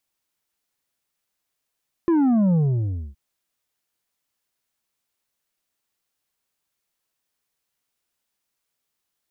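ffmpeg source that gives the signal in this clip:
-f lavfi -i "aevalsrc='0.158*clip((1.07-t)/0.61,0,1)*tanh(2*sin(2*PI*350*1.07/log(65/350)*(exp(log(65/350)*t/1.07)-1)))/tanh(2)':d=1.07:s=44100"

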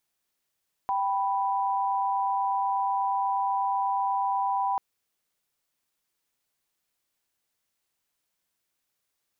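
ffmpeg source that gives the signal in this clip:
-f lavfi -i "aevalsrc='0.0473*(sin(2*PI*783.99*t)+sin(2*PI*987.77*t))':d=3.89:s=44100"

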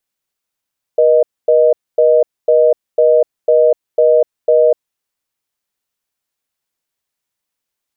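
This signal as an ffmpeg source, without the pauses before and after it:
-f lavfi -i "aevalsrc='0.335*(sin(2*PI*480*t)+sin(2*PI*620*t))*clip(min(mod(t,0.5),0.25-mod(t,0.5))/0.005,0,1)':d=3.85:s=44100"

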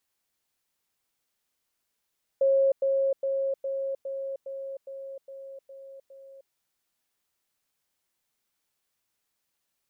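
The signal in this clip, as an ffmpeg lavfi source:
-f lavfi -i "aevalsrc='pow(10,(-18.5-3*floor(t/0.41))/20)*sin(2*PI*543*t)*clip(min(mod(t,0.41),0.31-mod(t,0.41))/0.005,0,1)':d=4.1:s=44100"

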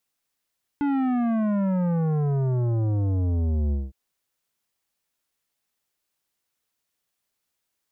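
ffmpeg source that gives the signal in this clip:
-f lavfi -i "aevalsrc='0.0794*clip((3.11-t)/0.2,0,1)*tanh(3.98*sin(2*PI*290*3.11/log(65/290)*(exp(log(65/290)*t/3.11)-1)))/tanh(3.98)':d=3.11:s=44100"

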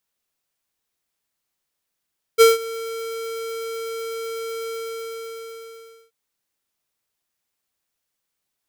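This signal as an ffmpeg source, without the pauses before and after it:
-f lavfi -i "aevalsrc='0.355*(2*lt(mod(454*t,1),0.5)-1)':d=3.73:s=44100,afade=t=in:d=0.031,afade=t=out:st=0.031:d=0.165:silence=0.0944,afade=t=out:st=2.31:d=1.42"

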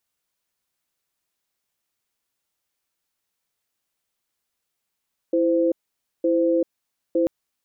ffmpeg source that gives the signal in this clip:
-f lavfi -i "aevalsrc='0.106*(sin(2*PI*332*t)+sin(2*PI*516*t))*clip(min(mod(t,0.91),0.39-mod(t,0.91))/0.005,0,1)':d=1.94:s=44100"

